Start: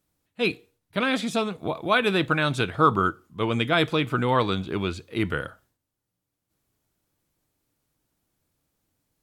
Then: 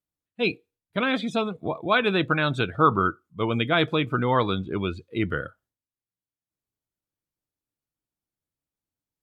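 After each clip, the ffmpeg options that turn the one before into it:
ffmpeg -i in.wav -af "afftdn=noise_reduction=17:noise_floor=-35" out.wav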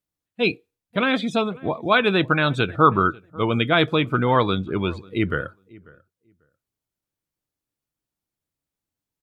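ffmpeg -i in.wav -filter_complex "[0:a]asplit=2[link_01][link_02];[link_02]adelay=542,lowpass=frequency=1700:poles=1,volume=-23dB,asplit=2[link_03][link_04];[link_04]adelay=542,lowpass=frequency=1700:poles=1,volume=0.17[link_05];[link_01][link_03][link_05]amix=inputs=3:normalize=0,volume=3.5dB" out.wav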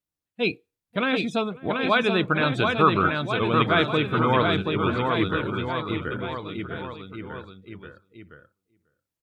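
ffmpeg -i in.wav -af "aecho=1:1:730|1387|1978|2510|2989:0.631|0.398|0.251|0.158|0.1,volume=-3.5dB" out.wav

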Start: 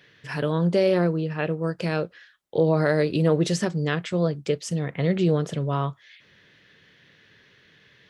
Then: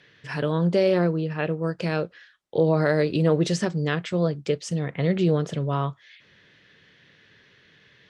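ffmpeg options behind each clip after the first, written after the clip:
ffmpeg -i in.wav -af "lowpass=8200" out.wav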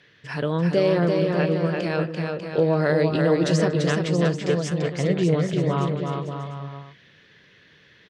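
ffmpeg -i in.wav -af "aecho=1:1:340|595|786.2|929.7|1037:0.631|0.398|0.251|0.158|0.1" out.wav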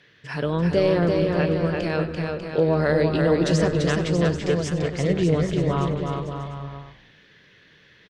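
ffmpeg -i in.wav -filter_complex "[0:a]asplit=6[link_01][link_02][link_03][link_04][link_05][link_06];[link_02]adelay=95,afreqshift=-85,volume=-16dB[link_07];[link_03]adelay=190,afreqshift=-170,volume=-21.8dB[link_08];[link_04]adelay=285,afreqshift=-255,volume=-27.7dB[link_09];[link_05]adelay=380,afreqshift=-340,volume=-33.5dB[link_10];[link_06]adelay=475,afreqshift=-425,volume=-39.4dB[link_11];[link_01][link_07][link_08][link_09][link_10][link_11]amix=inputs=6:normalize=0" out.wav

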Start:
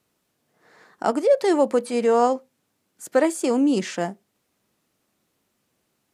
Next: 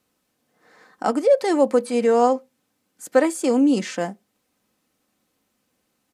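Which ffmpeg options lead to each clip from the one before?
ffmpeg -i in.wav -af "aecho=1:1:3.9:0.38" out.wav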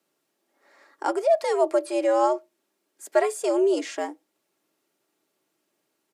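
ffmpeg -i in.wav -af "afreqshift=100,volume=-4dB" out.wav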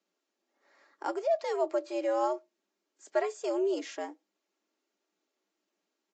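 ffmpeg -i in.wav -af "volume=-8dB" -ar 16000 -c:a libvorbis -b:a 48k out.ogg

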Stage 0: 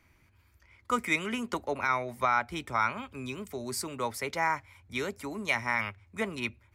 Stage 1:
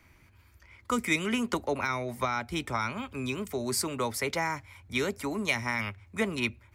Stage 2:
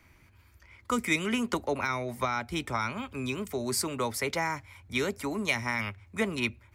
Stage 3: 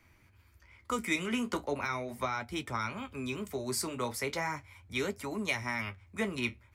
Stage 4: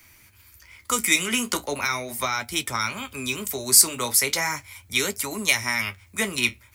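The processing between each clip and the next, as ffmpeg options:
ffmpeg -i in.wav -filter_complex "[0:a]acrossover=split=430|3000[link_01][link_02][link_03];[link_02]acompressor=threshold=-35dB:ratio=6[link_04];[link_01][link_04][link_03]amix=inputs=3:normalize=0,volume=5dB" out.wav
ffmpeg -i in.wav -af anull out.wav
ffmpeg -i in.wav -af "flanger=delay=8.6:depth=8.3:regen=-48:speed=0.38:shape=triangular" out.wav
ffmpeg -i in.wav -af "crystalizer=i=6.5:c=0,volume=3.5dB" out.wav

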